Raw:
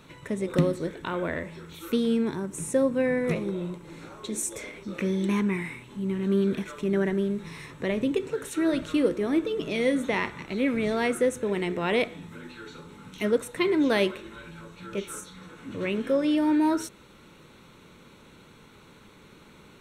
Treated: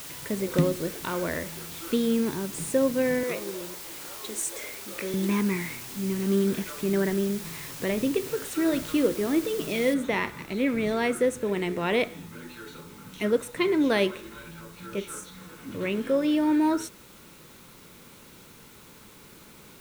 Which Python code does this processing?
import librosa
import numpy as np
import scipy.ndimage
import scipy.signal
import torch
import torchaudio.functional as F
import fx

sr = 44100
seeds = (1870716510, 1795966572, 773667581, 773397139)

y = fx.highpass(x, sr, hz=390.0, slope=12, at=(3.23, 5.14))
y = fx.median_filter(y, sr, points=5, at=(6.92, 7.38))
y = fx.noise_floor_step(y, sr, seeds[0], at_s=9.94, before_db=-41, after_db=-54, tilt_db=0.0)